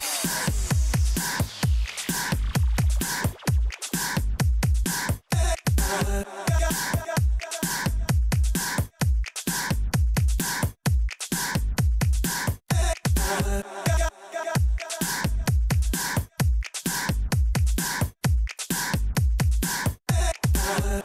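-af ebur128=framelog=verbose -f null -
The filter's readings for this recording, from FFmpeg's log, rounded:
Integrated loudness:
  I:         -25.5 LUFS
  Threshold: -35.5 LUFS
Loudness range:
  LRA:         0.7 LU
  Threshold: -45.6 LUFS
  LRA low:   -26.0 LUFS
  LRA high:  -25.3 LUFS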